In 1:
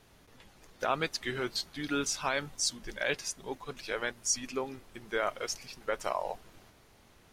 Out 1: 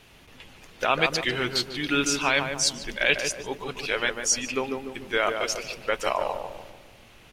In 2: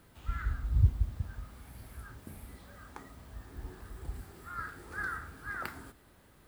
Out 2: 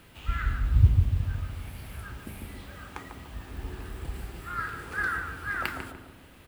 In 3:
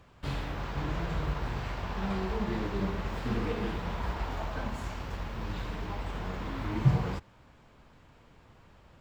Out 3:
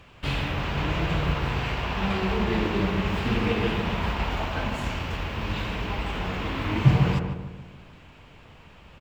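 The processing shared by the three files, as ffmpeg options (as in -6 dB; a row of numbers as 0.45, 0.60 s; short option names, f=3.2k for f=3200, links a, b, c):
-filter_complex "[0:a]equalizer=f=2.7k:t=o:w=0.78:g=9.5,asplit=2[a][b];[b]adelay=147,lowpass=f=1.1k:p=1,volume=-4dB,asplit=2[c][d];[d]adelay=147,lowpass=f=1.1k:p=1,volume=0.51,asplit=2[e][f];[f]adelay=147,lowpass=f=1.1k:p=1,volume=0.51,asplit=2[g][h];[h]adelay=147,lowpass=f=1.1k:p=1,volume=0.51,asplit=2[i][j];[j]adelay=147,lowpass=f=1.1k:p=1,volume=0.51,asplit=2[k][l];[l]adelay=147,lowpass=f=1.1k:p=1,volume=0.51,asplit=2[m][n];[n]adelay=147,lowpass=f=1.1k:p=1,volume=0.51[o];[a][c][e][g][i][k][m][o]amix=inputs=8:normalize=0,volume=5.5dB"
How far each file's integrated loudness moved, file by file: +8.0, +6.5, +7.5 LU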